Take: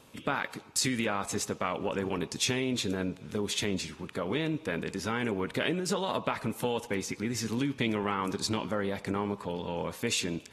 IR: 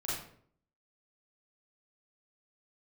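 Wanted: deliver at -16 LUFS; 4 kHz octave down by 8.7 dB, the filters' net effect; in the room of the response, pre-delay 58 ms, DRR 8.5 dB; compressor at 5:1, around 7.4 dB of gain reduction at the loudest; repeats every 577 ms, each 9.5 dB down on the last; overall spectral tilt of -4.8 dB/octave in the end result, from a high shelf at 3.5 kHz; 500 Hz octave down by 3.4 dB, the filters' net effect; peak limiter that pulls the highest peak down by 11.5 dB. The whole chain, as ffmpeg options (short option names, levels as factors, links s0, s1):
-filter_complex "[0:a]equalizer=f=500:t=o:g=-4,highshelf=f=3500:g=-7.5,equalizer=f=4000:t=o:g=-6,acompressor=threshold=0.0158:ratio=5,alimiter=level_in=3.16:limit=0.0631:level=0:latency=1,volume=0.316,aecho=1:1:577|1154|1731|2308:0.335|0.111|0.0365|0.012,asplit=2[s0][s1];[1:a]atrim=start_sample=2205,adelay=58[s2];[s1][s2]afir=irnorm=-1:irlink=0,volume=0.251[s3];[s0][s3]amix=inputs=2:normalize=0,volume=23.7"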